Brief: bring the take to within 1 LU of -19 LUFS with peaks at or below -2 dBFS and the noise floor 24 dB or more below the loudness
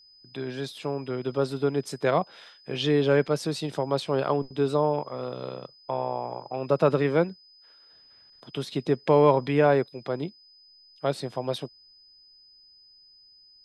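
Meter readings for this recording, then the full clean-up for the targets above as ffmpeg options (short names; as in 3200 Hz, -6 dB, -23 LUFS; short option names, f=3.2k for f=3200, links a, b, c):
steady tone 5000 Hz; tone level -53 dBFS; loudness -26.5 LUFS; peak -7.0 dBFS; loudness target -19.0 LUFS
-> -af "bandreject=f=5k:w=30"
-af "volume=7.5dB,alimiter=limit=-2dB:level=0:latency=1"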